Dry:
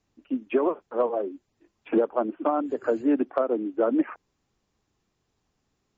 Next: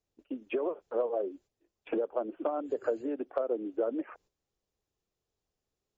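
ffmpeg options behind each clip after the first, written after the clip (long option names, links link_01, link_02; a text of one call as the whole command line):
ffmpeg -i in.wav -af "agate=range=-10dB:threshold=-52dB:ratio=16:detection=peak,acompressor=threshold=-28dB:ratio=5,equalizer=frequency=125:width_type=o:width=1:gain=-4,equalizer=frequency=250:width_type=o:width=1:gain=-7,equalizer=frequency=500:width_type=o:width=1:gain=5,equalizer=frequency=1000:width_type=o:width=1:gain=-5,equalizer=frequency=2000:width_type=o:width=1:gain=-4" out.wav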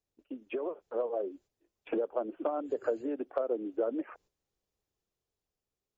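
ffmpeg -i in.wav -af "dynaudnorm=framelen=240:gausssize=9:maxgain=3.5dB,volume=-4dB" out.wav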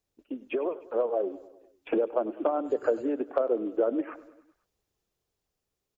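ffmpeg -i in.wav -af "aecho=1:1:100|200|300|400|500:0.119|0.0713|0.0428|0.0257|0.0154,volume=5.5dB" out.wav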